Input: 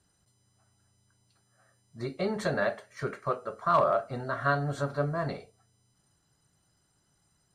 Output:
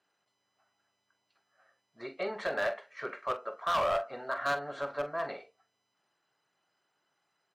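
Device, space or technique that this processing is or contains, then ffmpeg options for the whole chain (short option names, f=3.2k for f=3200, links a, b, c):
megaphone: -filter_complex "[0:a]highpass=500,lowpass=3.2k,equalizer=f=2.5k:t=o:w=0.51:g=4,asoftclip=type=hard:threshold=-25dB,asplit=2[a][b];[b]adelay=44,volume=-12.5dB[c];[a][c]amix=inputs=2:normalize=0"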